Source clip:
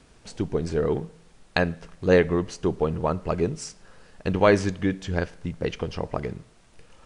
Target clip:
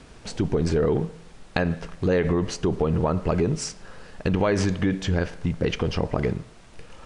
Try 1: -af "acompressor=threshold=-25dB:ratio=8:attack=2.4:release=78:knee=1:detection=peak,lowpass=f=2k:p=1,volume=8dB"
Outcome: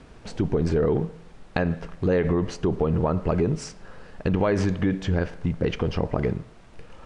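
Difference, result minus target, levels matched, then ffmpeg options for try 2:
8000 Hz band -7.0 dB
-af "acompressor=threshold=-25dB:ratio=8:attack=2.4:release=78:knee=1:detection=peak,lowpass=f=6.3k:p=1,volume=8dB"

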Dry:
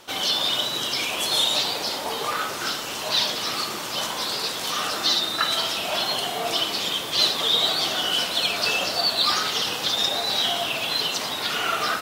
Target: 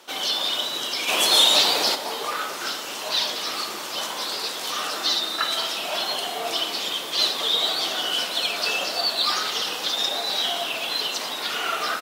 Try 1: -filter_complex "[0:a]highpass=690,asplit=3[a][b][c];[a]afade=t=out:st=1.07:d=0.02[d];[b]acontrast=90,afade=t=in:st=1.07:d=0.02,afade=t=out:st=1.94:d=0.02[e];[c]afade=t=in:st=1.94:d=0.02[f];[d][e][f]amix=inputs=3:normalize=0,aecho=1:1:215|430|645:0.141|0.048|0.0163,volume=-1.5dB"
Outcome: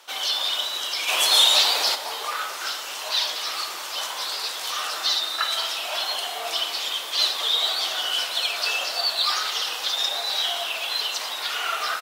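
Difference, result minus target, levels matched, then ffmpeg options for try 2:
250 Hz band -12.5 dB
-filter_complex "[0:a]highpass=250,asplit=3[a][b][c];[a]afade=t=out:st=1.07:d=0.02[d];[b]acontrast=90,afade=t=in:st=1.07:d=0.02,afade=t=out:st=1.94:d=0.02[e];[c]afade=t=in:st=1.94:d=0.02[f];[d][e][f]amix=inputs=3:normalize=0,aecho=1:1:215|430|645:0.141|0.048|0.0163,volume=-1.5dB"

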